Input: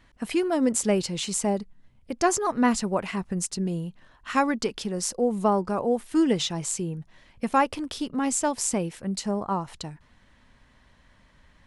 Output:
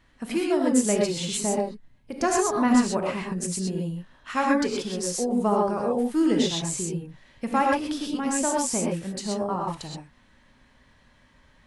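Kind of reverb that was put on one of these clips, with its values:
reverb whose tail is shaped and stops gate 150 ms rising, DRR −1.5 dB
level −3 dB

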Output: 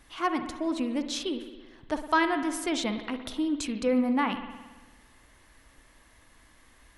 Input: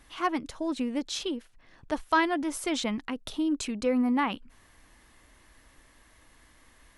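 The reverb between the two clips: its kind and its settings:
spring reverb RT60 1.3 s, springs 55 ms, chirp 20 ms, DRR 8 dB

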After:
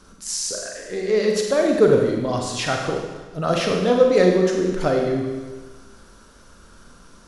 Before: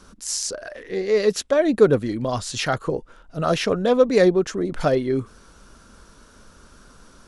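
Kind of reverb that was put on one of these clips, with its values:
four-comb reverb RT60 1.3 s, combs from 33 ms, DRR 1 dB
level −1.5 dB

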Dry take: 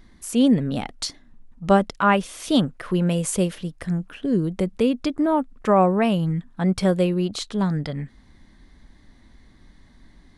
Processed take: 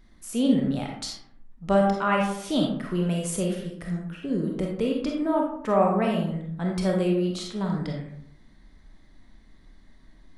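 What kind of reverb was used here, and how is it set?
comb and all-pass reverb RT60 0.7 s, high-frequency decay 0.5×, pre-delay 5 ms, DRR −0.5 dB
level −7 dB

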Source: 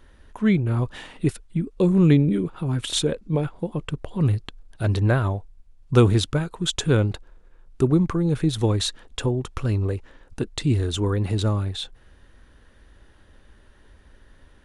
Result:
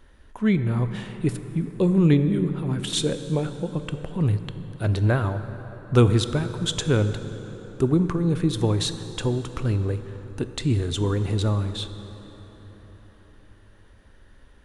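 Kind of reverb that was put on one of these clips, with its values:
dense smooth reverb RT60 4.7 s, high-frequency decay 0.55×, pre-delay 0 ms, DRR 9.5 dB
level −1.5 dB

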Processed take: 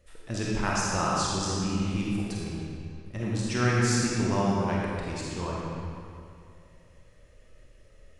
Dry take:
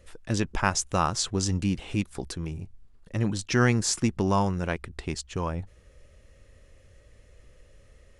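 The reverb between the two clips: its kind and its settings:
comb and all-pass reverb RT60 2.4 s, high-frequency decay 0.8×, pre-delay 5 ms, DRR −5.5 dB
level −7 dB

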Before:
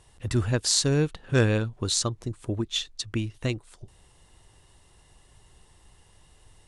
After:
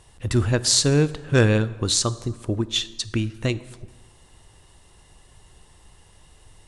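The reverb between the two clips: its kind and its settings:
dense smooth reverb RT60 1.4 s, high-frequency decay 0.65×, DRR 15 dB
level +4.5 dB

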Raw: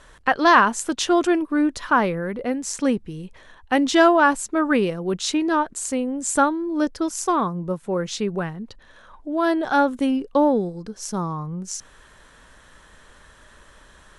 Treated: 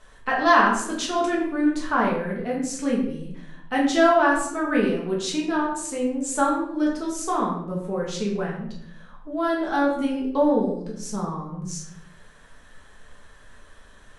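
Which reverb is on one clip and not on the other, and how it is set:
rectangular room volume 160 cubic metres, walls mixed, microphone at 1.5 metres
level −8 dB

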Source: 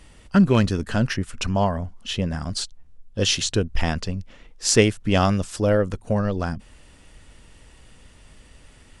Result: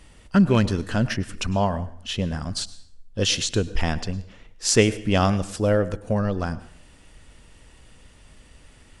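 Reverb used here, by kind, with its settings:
dense smooth reverb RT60 0.58 s, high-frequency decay 0.85×, pre-delay 90 ms, DRR 16 dB
level −1 dB

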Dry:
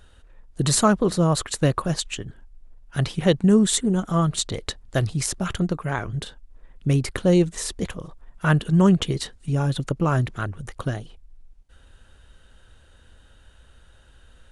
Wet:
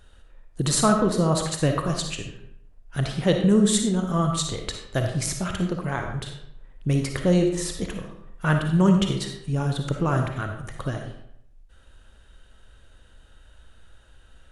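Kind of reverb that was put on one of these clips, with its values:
comb and all-pass reverb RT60 0.74 s, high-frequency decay 0.7×, pre-delay 15 ms, DRR 3.5 dB
level −2.5 dB

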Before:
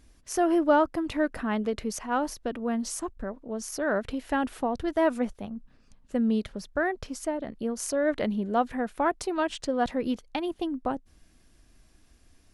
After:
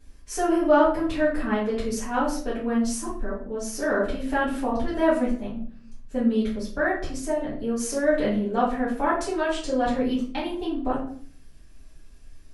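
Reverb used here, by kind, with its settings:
rectangular room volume 51 cubic metres, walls mixed, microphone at 2.1 metres
level −7 dB

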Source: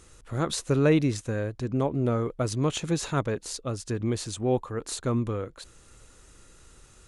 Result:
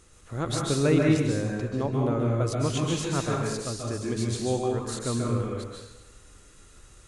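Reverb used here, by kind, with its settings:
dense smooth reverb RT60 0.95 s, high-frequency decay 0.9×, pre-delay 120 ms, DRR −2 dB
level −3 dB

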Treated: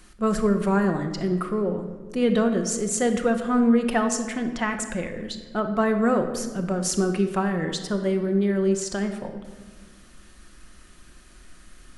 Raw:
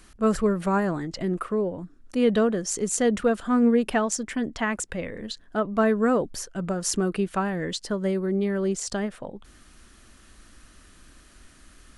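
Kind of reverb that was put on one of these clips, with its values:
rectangular room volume 1,400 cubic metres, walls mixed, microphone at 0.94 metres

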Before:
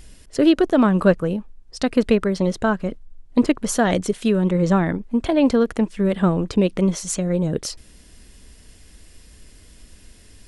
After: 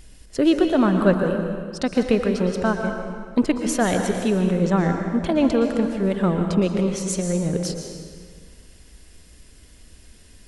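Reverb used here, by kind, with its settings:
dense smooth reverb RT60 1.8 s, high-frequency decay 0.8×, pre-delay 105 ms, DRR 4 dB
level −2.5 dB

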